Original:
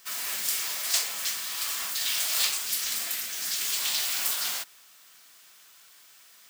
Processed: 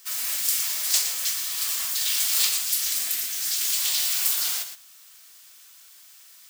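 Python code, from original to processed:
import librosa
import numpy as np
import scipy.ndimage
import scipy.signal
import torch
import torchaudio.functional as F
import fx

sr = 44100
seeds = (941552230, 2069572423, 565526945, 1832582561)

p1 = fx.high_shelf(x, sr, hz=3100.0, db=9.5)
p2 = p1 + fx.echo_single(p1, sr, ms=116, db=-9.5, dry=0)
y = p2 * 10.0 ** (-4.0 / 20.0)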